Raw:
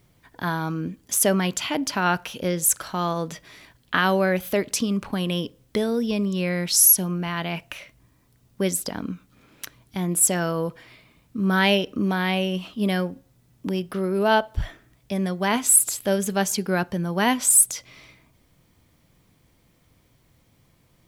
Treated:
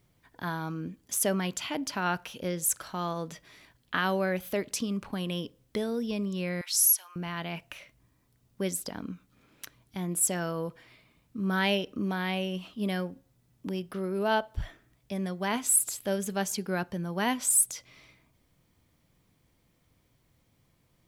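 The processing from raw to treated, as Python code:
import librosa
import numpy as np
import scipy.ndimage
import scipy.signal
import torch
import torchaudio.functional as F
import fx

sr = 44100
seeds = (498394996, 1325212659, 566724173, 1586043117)

y = fx.highpass(x, sr, hz=970.0, slope=24, at=(6.61, 7.16))
y = y * librosa.db_to_amplitude(-7.5)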